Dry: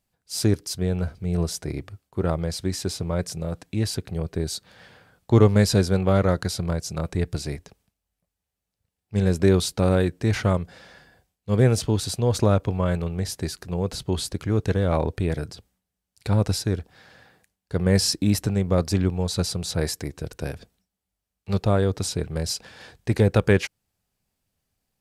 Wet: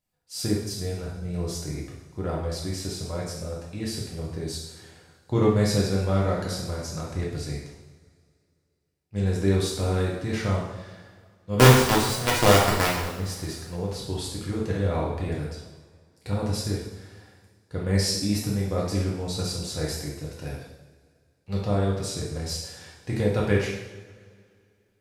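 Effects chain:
0:11.59–0:13.08: log-companded quantiser 2 bits
coupled-rooms reverb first 0.85 s, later 2.5 s, from −18 dB, DRR −4.5 dB
level −9 dB

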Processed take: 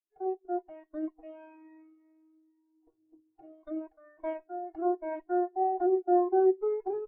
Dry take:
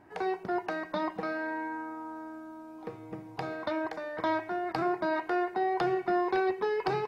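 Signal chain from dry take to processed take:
lower of the sound and its delayed copy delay 2.8 ms
every bin expanded away from the loudest bin 2.5 to 1
level +1.5 dB

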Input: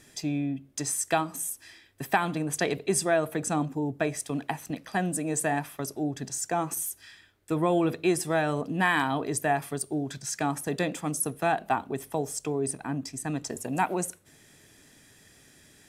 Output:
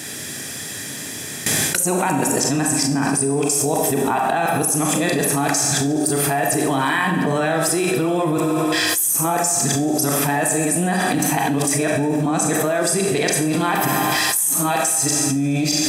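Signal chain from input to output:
played backwards from end to start
high-pass filter 94 Hz 24 dB per octave
hum removal 188.4 Hz, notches 18
noise gate with hold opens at −44 dBFS
high-shelf EQ 5,300 Hz +6 dB
in parallel at −2 dB: output level in coarse steps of 10 dB
on the sum: brickwall limiter −15.5 dBFS, peak gain reduction 9 dB
feedback echo with a high-pass in the loop 71 ms, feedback 79%, high-pass 150 Hz, level −17 dB
four-comb reverb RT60 0.75 s, combs from 29 ms, DRR 3.5 dB
envelope flattener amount 100%

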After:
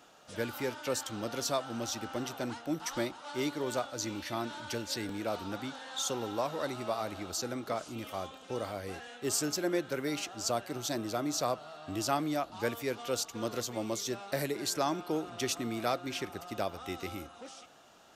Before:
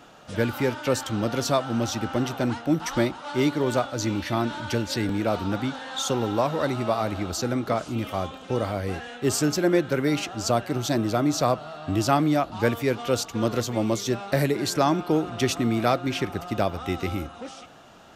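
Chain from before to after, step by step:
bass and treble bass −7 dB, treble +6 dB
level −9 dB

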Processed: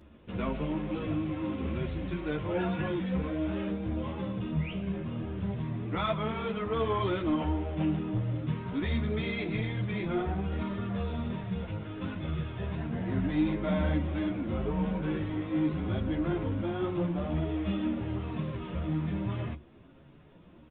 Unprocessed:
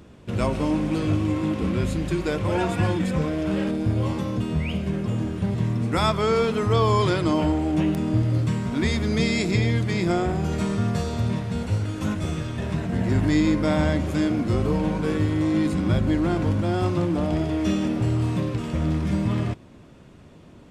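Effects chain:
flanger 0.28 Hz, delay 3.1 ms, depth 5.3 ms, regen −58%
soft clipping −19 dBFS, distortion −20 dB
on a send at −17.5 dB: convolution reverb RT60 0.10 s, pre-delay 3 ms
on the sum: downsampling to 8,000 Hz
string-ensemble chorus

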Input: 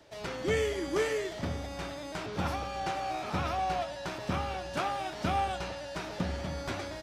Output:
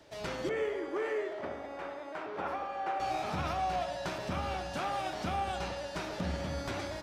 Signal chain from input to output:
0:00.49–0:03.00: three-way crossover with the lows and the highs turned down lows −21 dB, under 320 Hz, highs −18 dB, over 2,300 Hz
brickwall limiter −25.5 dBFS, peak gain reduction 7 dB
tape delay 66 ms, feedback 86%, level −9 dB, low-pass 1,500 Hz

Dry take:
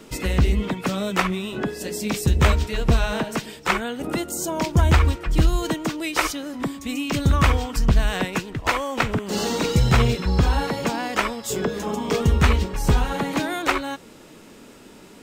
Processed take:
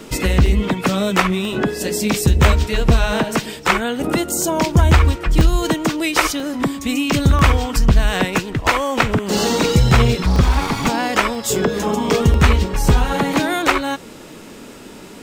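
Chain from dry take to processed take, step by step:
0:10.23–0:10.88: lower of the sound and its delayed copy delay 0.87 ms
in parallel at +0.5 dB: downward compressor, threshold −24 dBFS, peak gain reduction 11.5 dB
on the sum: regular buffer underruns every 0.99 s, samples 64, zero, from 0:00.46
level +2 dB

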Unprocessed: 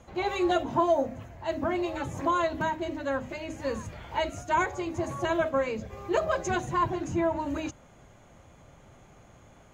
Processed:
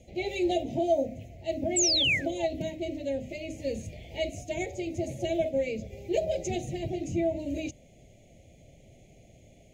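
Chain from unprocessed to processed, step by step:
sound drawn into the spectrogram fall, 0:01.76–0:02.46, 760–8,000 Hz −24 dBFS
elliptic band-stop filter 670–2,200 Hz, stop band 60 dB

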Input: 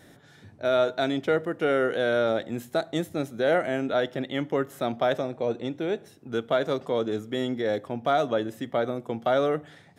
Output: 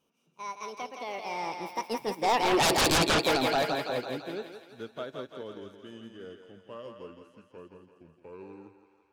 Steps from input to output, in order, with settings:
gliding playback speed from 153% → 66%
source passing by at 0:02.82, 25 m/s, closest 1.7 metres
parametric band 710 Hz −4 dB 0.82 octaves
feedback echo with a high-pass in the loop 168 ms, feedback 70%, high-pass 410 Hz, level −4 dB
sine wavefolder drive 19 dB, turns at −19 dBFS
parametric band 2,000 Hz −6.5 dB 0.21 octaves
expander for the loud parts 1.5 to 1, over −46 dBFS

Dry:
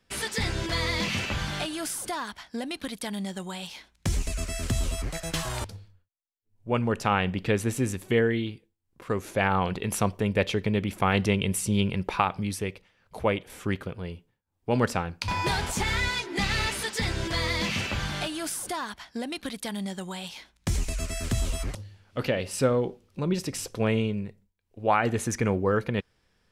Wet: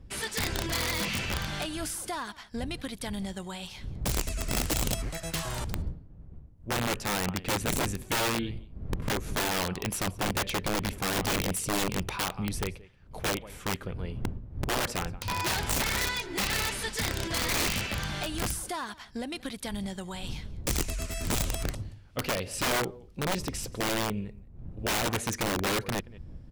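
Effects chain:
wind on the microphone 93 Hz −36 dBFS
single-tap delay 178 ms −21 dB
wrap-around overflow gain 20 dB
level −2.5 dB

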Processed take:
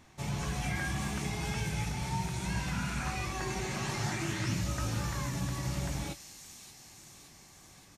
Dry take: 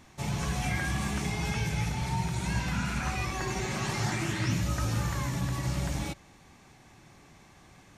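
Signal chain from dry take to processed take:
double-tracking delay 21 ms −12 dB
on a send: delay with a high-pass on its return 572 ms, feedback 64%, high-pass 4,700 Hz, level −4 dB
on the sum: level −3.5 dB

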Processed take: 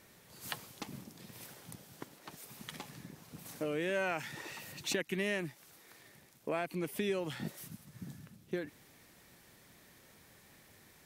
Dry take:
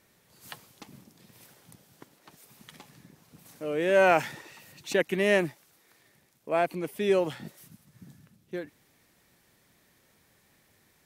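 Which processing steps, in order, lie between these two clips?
dynamic equaliser 610 Hz, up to −7 dB, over −37 dBFS, Q 0.73
downward compressor 4 to 1, threshold −37 dBFS, peak gain reduction 14.5 dB
level +4 dB

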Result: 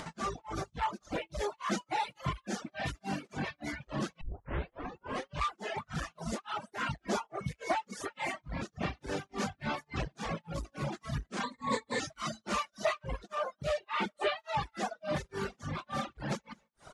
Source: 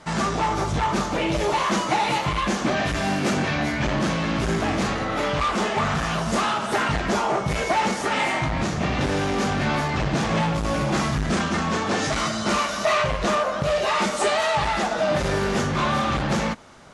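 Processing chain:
reverb reduction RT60 1.1 s
single-tap delay 196 ms −23.5 dB
upward compression, threshold −28 dBFS
0:04.21: tape start 1.13 s
amplitude tremolo 3.5 Hz, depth 99%
0:11.43–0:12.00: EQ curve with evenly spaced ripples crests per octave 1, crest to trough 18 dB
reverb reduction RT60 0.83 s
0:13.79–0:14.37: high shelf with overshoot 4,500 Hz −11.5 dB, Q 1.5
level −7 dB

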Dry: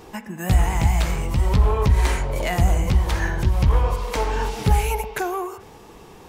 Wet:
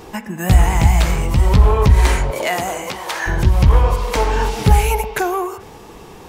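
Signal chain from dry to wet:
0:02.30–0:03.26: high-pass filter 260 Hz → 670 Hz 12 dB per octave
level +6 dB

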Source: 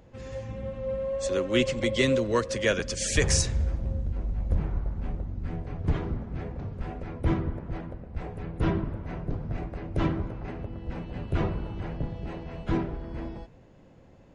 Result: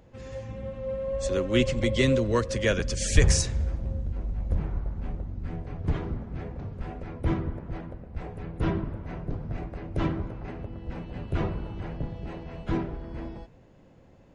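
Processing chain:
0:01.07–0:03.32: low-shelf EQ 140 Hz +11 dB
level −1 dB

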